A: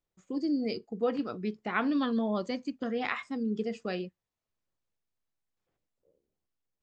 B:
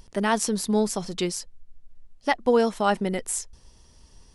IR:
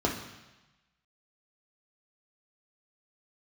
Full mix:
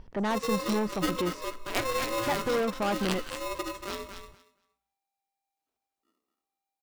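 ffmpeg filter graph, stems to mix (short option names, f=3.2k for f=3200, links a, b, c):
-filter_complex "[0:a]aeval=exprs='0.188*(cos(1*acos(clip(val(0)/0.188,-1,1)))-cos(1*PI/2))+0.0237*(cos(2*acos(clip(val(0)/0.188,-1,1)))-cos(2*PI/2))+0.015*(cos(7*acos(clip(val(0)/0.188,-1,1)))-cos(7*PI/2))+0.0015*(cos(8*acos(clip(val(0)/0.188,-1,1)))-cos(8*PI/2))':c=same,highshelf=f=3.9k:g=11,aeval=exprs='val(0)*sgn(sin(2*PI*790*n/s))':c=same,volume=-3dB,asplit=3[a][b][c];[b]volume=-17.5dB[d];[c]volume=-6.5dB[e];[1:a]lowpass=2.1k,asoftclip=type=tanh:threshold=-26dB,volume=1dB[f];[2:a]atrim=start_sample=2205[g];[d][g]afir=irnorm=-1:irlink=0[h];[e]aecho=0:1:233|466|699:1|0.17|0.0289[i];[a][f][h][i]amix=inputs=4:normalize=0"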